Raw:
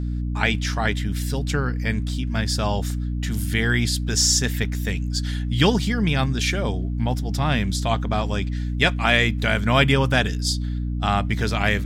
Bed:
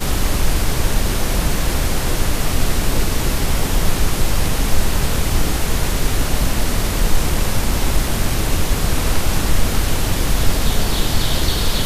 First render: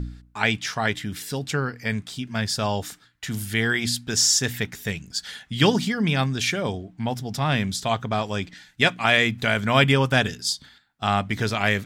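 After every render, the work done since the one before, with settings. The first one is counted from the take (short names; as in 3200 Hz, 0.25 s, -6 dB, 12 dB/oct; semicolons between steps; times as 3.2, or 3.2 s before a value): de-hum 60 Hz, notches 5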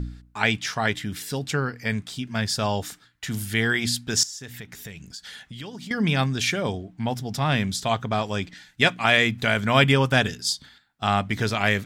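4.23–5.91 compressor 5:1, threshold -36 dBFS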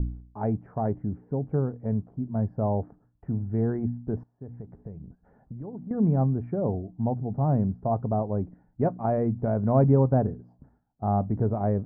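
inverse Chebyshev low-pass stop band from 3400 Hz, stop band 70 dB; low shelf 67 Hz +6 dB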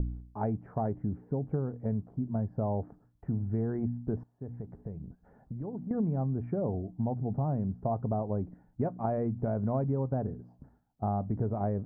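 compressor 6:1, threshold -27 dBFS, peak gain reduction 12 dB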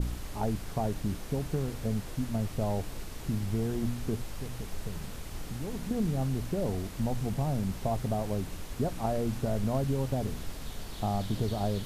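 add bed -23 dB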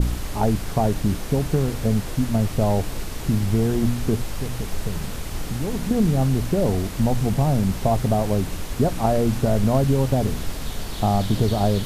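gain +10.5 dB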